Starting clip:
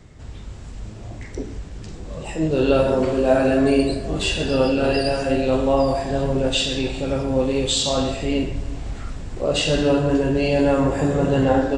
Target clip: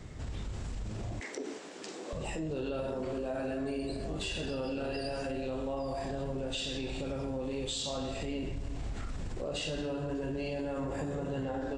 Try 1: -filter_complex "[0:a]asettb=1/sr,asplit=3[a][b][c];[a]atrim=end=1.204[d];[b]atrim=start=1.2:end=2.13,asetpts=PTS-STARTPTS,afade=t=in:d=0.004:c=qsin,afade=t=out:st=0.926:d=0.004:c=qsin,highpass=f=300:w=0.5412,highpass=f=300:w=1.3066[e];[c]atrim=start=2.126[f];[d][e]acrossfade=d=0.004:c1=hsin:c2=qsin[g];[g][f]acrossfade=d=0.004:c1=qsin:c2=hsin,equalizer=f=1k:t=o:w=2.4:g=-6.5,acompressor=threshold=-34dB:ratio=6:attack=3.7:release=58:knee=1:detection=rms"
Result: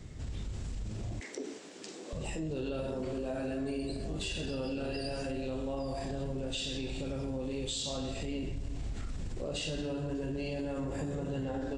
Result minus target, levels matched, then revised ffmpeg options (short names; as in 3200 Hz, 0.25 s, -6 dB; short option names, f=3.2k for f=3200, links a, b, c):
1000 Hz band -3.0 dB
-filter_complex "[0:a]asettb=1/sr,asplit=3[a][b][c];[a]atrim=end=1.204[d];[b]atrim=start=1.2:end=2.13,asetpts=PTS-STARTPTS,afade=t=in:d=0.004:c=qsin,afade=t=out:st=0.926:d=0.004:c=qsin,highpass=f=300:w=0.5412,highpass=f=300:w=1.3066[e];[c]atrim=start=2.126[f];[d][e]acrossfade=d=0.004:c1=hsin:c2=qsin[g];[g][f]acrossfade=d=0.004:c1=qsin:c2=hsin,acompressor=threshold=-34dB:ratio=6:attack=3.7:release=58:knee=1:detection=rms"